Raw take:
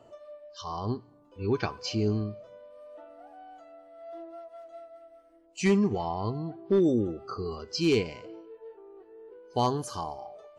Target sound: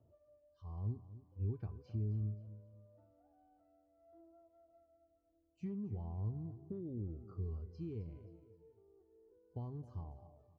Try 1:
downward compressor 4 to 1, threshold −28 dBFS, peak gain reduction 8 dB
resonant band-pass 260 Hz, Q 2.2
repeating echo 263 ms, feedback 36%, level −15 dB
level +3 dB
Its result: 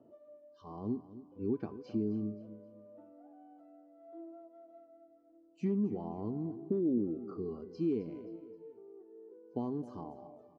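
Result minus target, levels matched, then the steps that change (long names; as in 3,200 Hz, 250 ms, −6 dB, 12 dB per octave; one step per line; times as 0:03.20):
125 Hz band −10.5 dB
change: resonant band-pass 78 Hz, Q 2.2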